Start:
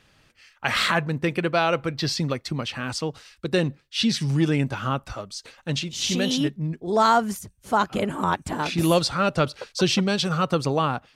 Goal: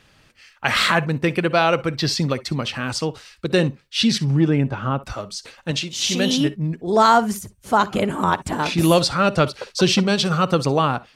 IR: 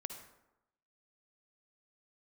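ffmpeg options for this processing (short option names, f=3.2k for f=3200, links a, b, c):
-filter_complex "[0:a]asettb=1/sr,asplit=3[a][b][c];[a]atrim=end=4.184[d];[b]atrim=start=4.18:end=5.02,asetpts=PTS-STARTPTS,afade=t=in:d=0.004:c=qsin,afade=t=out:st=0.836:d=0.004:c=qsin,lowpass=f=1.3k:p=1[e];[c]atrim=start=5.016[f];[d][e]acrossfade=d=0.004:c1=hsin:c2=qsin[g];[g][f]acrossfade=d=0.004:c1=qsin:c2=hsin,asettb=1/sr,asplit=3[h][i][j];[h]atrim=end=5.714[k];[i]atrim=start=5.71:end=6.2,asetpts=PTS-STARTPTS,afade=t=in:d=0.004:c=qsin,afade=t=out:st=0.486:d=0.004:c=qsin,lowshelf=f=180:g=-8.5[l];[j]atrim=start=6.196[m];[k][l]acrossfade=d=0.004:c1=hsin:c2=qsin[n];[n][m]acrossfade=d=0.004:c1=qsin:c2=hsin,asplit=2[o][p];[1:a]atrim=start_sample=2205,atrim=end_sample=3087[q];[p][q]afir=irnorm=-1:irlink=0,volume=-1dB[r];[o][r]amix=inputs=2:normalize=0"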